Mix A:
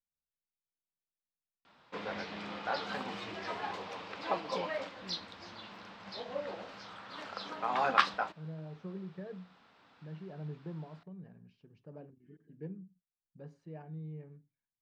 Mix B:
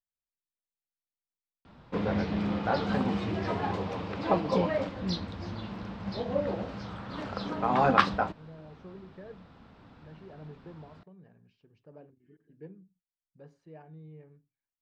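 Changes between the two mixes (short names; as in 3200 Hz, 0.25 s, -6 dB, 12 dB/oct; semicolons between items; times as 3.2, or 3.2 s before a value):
speech: add bell 180 Hz -6.5 dB 1 oct; background: remove HPF 1400 Hz 6 dB/oct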